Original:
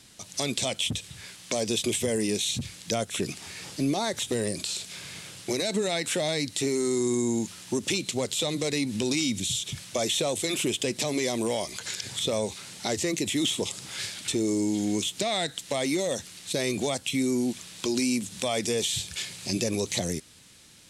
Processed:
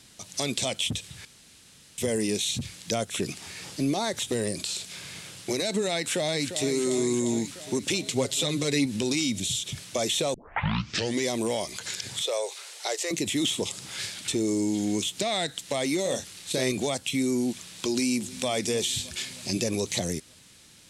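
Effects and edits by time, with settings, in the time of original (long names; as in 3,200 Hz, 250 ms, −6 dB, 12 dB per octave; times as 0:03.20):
0:01.25–0:01.98: fill with room tone
0:05.98–0:06.68: delay throw 350 ms, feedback 70%, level −9.5 dB
0:08.10–0:08.86: comb filter 7.3 ms
0:10.34: tape start 0.90 s
0:12.22–0:13.11: Butterworth high-pass 420 Hz
0:16.02–0:16.72: double-tracking delay 31 ms −6 dB
0:17.87–0:18.48: delay throw 310 ms, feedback 65%, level −18 dB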